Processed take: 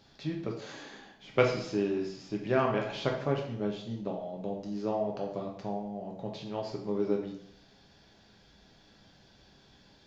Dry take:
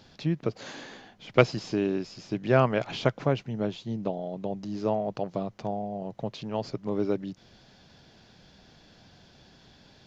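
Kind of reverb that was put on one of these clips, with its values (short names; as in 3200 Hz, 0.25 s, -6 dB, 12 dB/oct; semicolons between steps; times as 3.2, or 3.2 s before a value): plate-style reverb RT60 0.66 s, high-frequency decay 0.9×, DRR -0.5 dB; gain -7 dB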